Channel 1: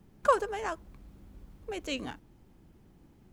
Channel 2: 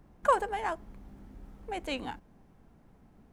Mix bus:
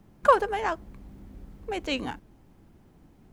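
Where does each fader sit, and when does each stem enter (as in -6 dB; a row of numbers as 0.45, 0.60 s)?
+1.0, -1.5 dB; 0.00, 0.00 s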